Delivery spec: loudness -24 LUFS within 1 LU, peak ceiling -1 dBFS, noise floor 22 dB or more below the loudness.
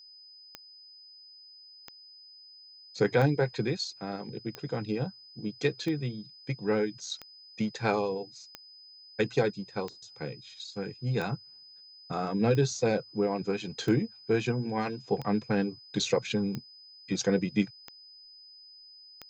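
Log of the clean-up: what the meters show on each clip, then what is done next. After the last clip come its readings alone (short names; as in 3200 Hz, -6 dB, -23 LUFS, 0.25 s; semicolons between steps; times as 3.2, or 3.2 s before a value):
clicks 15; steady tone 5000 Hz; tone level -50 dBFS; loudness -31.0 LUFS; peak -12.0 dBFS; loudness target -24.0 LUFS
-> de-click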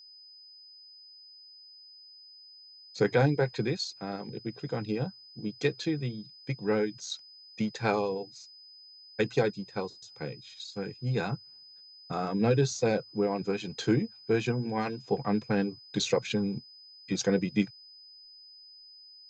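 clicks 0; steady tone 5000 Hz; tone level -50 dBFS
-> notch 5000 Hz, Q 30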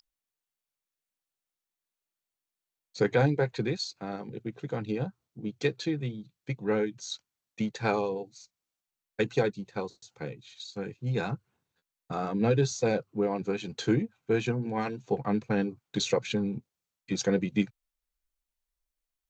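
steady tone none; loudness -31.0 LUFS; peak -12.0 dBFS; loudness target -24.0 LUFS
-> gain +7 dB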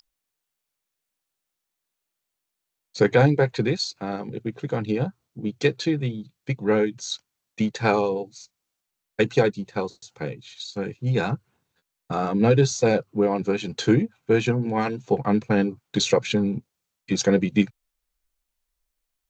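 loudness -24.0 LUFS; peak -5.0 dBFS; noise floor -83 dBFS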